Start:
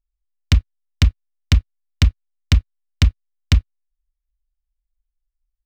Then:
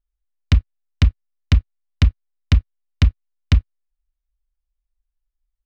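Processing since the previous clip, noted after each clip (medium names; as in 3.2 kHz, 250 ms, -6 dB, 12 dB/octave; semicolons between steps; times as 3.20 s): low-pass 2.5 kHz 6 dB/octave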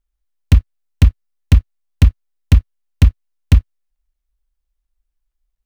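dead-time distortion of 0.17 ms; trim +4.5 dB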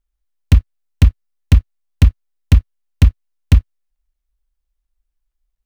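no audible change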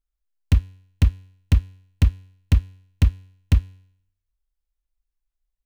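feedback comb 93 Hz, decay 0.7 s, harmonics all, mix 40%; trim -3 dB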